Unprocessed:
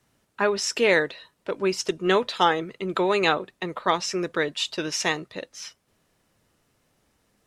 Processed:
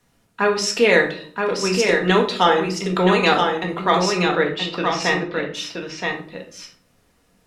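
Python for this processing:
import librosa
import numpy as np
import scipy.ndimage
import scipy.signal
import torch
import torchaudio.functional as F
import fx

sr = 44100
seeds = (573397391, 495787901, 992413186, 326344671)

y = fx.lowpass(x, sr, hz=3500.0, slope=12, at=(4.12, 5.54))
y = y + 10.0 ** (-4.5 / 20.0) * np.pad(y, (int(974 * sr / 1000.0), 0))[:len(y)]
y = fx.room_shoebox(y, sr, seeds[0], volume_m3=490.0, walls='furnished', distance_m=1.8)
y = y * librosa.db_to_amplitude(2.5)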